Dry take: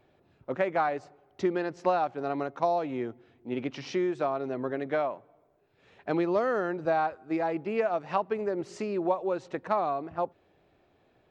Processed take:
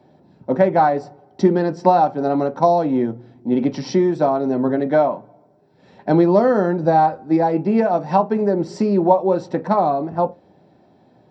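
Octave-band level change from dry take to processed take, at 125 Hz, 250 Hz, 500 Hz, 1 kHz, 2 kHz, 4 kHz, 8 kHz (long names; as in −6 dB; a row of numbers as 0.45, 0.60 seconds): +17.0 dB, +14.5 dB, +11.5 dB, +12.0 dB, +5.0 dB, +7.0 dB, can't be measured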